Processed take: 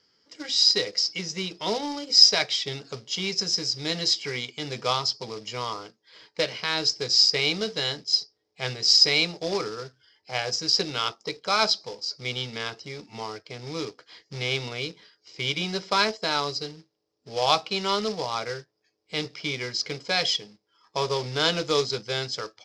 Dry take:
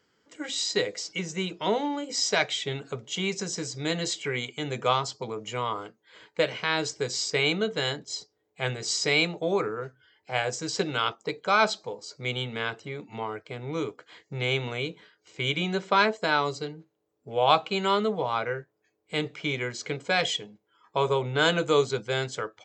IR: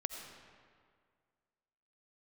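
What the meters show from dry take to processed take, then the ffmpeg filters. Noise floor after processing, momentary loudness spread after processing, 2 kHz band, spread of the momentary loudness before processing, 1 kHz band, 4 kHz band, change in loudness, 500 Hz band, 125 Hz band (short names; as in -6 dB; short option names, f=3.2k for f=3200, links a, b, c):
-75 dBFS, 16 LU, -2.0 dB, 12 LU, -2.0 dB, +8.0 dB, +3.5 dB, -2.5 dB, -2.5 dB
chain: -af "acrusher=bits=3:mode=log:mix=0:aa=0.000001,lowpass=f=5.1k:t=q:w=7.8,bandreject=f=1.5k:w=24,volume=-2.5dB"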